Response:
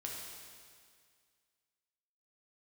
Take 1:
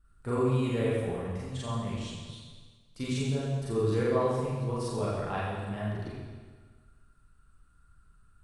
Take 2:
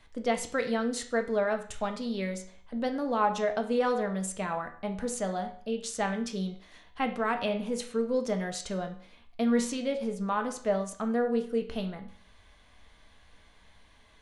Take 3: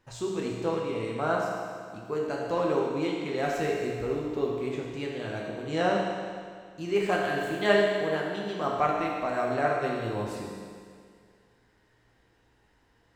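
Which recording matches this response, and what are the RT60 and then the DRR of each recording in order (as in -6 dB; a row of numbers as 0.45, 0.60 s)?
3; 1.5, 0.50, 2.0 s; -8.5, 4.5, -2.5 dB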